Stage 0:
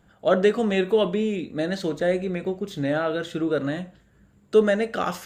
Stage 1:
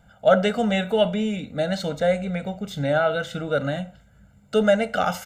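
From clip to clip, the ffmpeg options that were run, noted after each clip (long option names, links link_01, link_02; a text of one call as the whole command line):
ffmpeg -i in.wav -af "aecho=1:1:1.4:0.98" out.wav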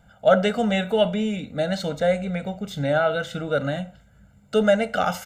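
ffmpeg -i in.wav -af anull out.wav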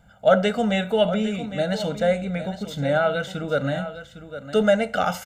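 ffmpeg -i in.wav -af "aecho=1:1:807:0.251" out.wav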